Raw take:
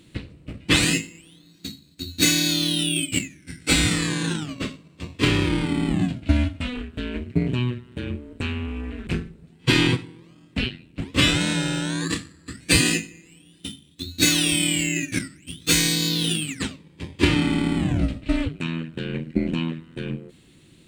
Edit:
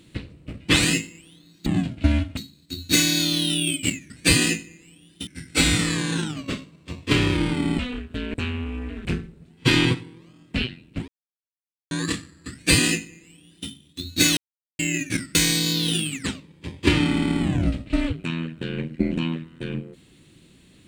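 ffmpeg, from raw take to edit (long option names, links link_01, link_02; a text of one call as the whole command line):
ffmpeg -i in.wav -filter_complex "[0:a]asplit=12[link_01][link_02][link_03][link_04][link_05][link_06][link_07][link_08][link_09][link_10][link_11][link_12];[link_01]atrim=end=1.662[link_13];[link_02]atrim=start=5.908:end=6.622[link_14];[link_03]atrim=start=1.658:end=3.392[link_15];[link_04]atrim=start=12.538:end=13.712[link_16];[link_05]atrim=start=3.388:end=5.912[link_17];[link_06]atrim=start=6.618:end=7.172[link_18];[link_07]atrim=start=8.358:end=11.1,asetpts=PTS-STARTPTS,afade=type=out:start_time=2.738:duration=0.004:curve=hsin[link_19];[link_08]atrim=start=11.1:end=11.93,asetpts=PTS-STARTPTS,volume=0[link_20];[link_09]atrim=start=11.93:end=14.39,asetpts=PTS-STARTPTS,afade=type=in:duration=0.004:curve=hsin,afade=type=out:start_time=2.456:duration=0.004:curve=hsin[link_21];[link_10]atrim=start=14.39:end=14.81,asetpts=PTS-STARTPTS,volume=0[link_22];[link_11]atrim=start=14.81:end=15.372,asetpts=PTS-STARTPTS,afade=type=in:duration=0.004:curve=hsin[link_23];[link_12]atrim=start=15.708[link_24];[link_13][link_14]acrossfade=duration=0.004:curve1=hsin:curve2=hsin[link_25];[link_25][link_15]acrossfade=duration=0.004:curve1=hsin:curve2=hsin[link_26];[link_26][link_16]acrossfade=duration=0.004:curve1=hsin:curve2=hsin[link_27];[link_27][link_17]acrossfade=duration=0.004:curve1=hsin:curve2=hsin[link_28];[link_28][link_18]acrossfade=duration=0.004:curve1=hsin:curve2=hsin[link_29];[link_19][link_20][link_21][link_22][link_23]concat=n=5:v=0:a=1[link_30];[link_29][link_30]acrossfade=duration=0.004:curve1=hsin:curve2=hsin[link_31];[link_31][link_24]acrossfade=duration=0.004:curve1=hsin:curve2=hsin" out.wav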